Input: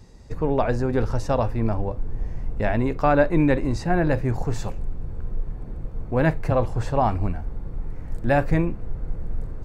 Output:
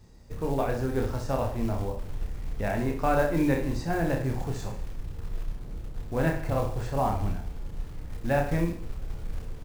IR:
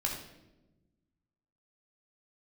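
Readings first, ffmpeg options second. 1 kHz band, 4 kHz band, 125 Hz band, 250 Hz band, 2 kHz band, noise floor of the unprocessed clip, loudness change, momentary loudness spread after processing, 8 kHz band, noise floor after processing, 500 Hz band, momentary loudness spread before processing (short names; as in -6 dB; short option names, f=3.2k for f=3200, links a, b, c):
-5.5 dB, -2.5 dB, -5.5 dB, -5.5 dB, -5.0 dB, -35 dBFS, -6.0 dB, 14 LU, n/a, -40 dBFS, -5.5 dB, 15 LU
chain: -af "acrusher=bits=6:mode=log:mix=0:aa=0.000001,aecho=1:1:30|64.5|104.2|149.8|202.3:0.631|0.398|0.251|0.158|0.1,volume=-7.5dB"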